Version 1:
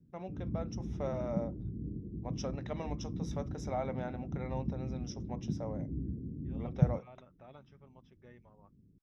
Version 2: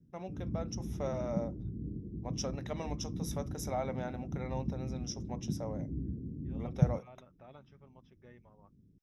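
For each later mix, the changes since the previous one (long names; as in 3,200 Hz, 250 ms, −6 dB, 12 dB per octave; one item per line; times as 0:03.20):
first voice: remove high-frequency loss of the air 130 metres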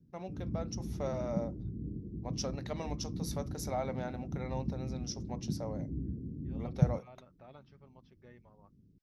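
master: remove Butterworth band-reject 4,400 Hz, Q 4.6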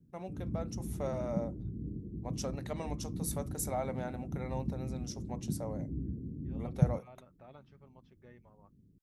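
master: add high shelf with overshoot 6,700 Hz +7.5 dB, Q 3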